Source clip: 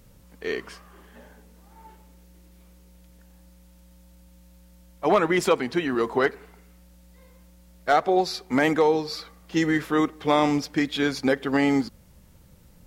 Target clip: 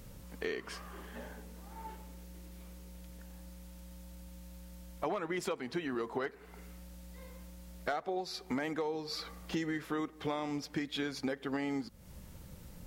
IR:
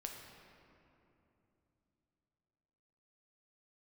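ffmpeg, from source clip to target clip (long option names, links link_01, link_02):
-af "acompressor=threshold=-37dB:ratio=6,volume=2.5dB"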